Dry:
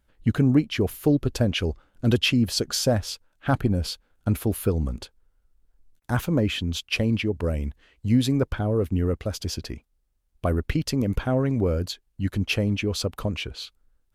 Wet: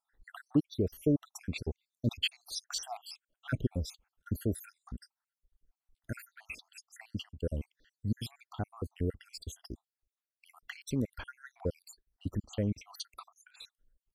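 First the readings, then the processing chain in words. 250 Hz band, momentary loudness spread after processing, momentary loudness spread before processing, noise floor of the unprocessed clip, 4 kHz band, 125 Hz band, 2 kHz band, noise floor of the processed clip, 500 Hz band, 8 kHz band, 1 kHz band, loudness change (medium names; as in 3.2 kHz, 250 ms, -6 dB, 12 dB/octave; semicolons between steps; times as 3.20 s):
-12.5 dB, 20 LU, 11 LU, -70 dBFS, -12.0 dB, -13.0 dB, -13.5 dB, under -85 dBFS, -13.0 dB, -11.5 dB, -14.0 dB, -12.0 dB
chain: random holes in the spectrogram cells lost 71%; trim -7 dB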